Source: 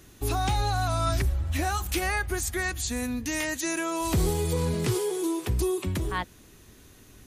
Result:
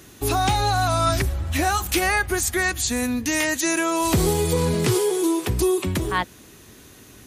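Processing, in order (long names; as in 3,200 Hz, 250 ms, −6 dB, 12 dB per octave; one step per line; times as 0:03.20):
high-pass filter 120 Hz 6 dB per octave
level +7.5 dB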